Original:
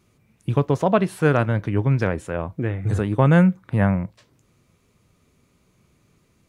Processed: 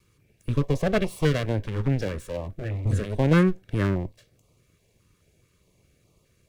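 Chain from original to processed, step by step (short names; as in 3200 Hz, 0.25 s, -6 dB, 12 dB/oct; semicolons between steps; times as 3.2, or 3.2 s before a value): minimum comb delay 1.8 ms; stepped notch 4.8 Hz 670–1600 Hz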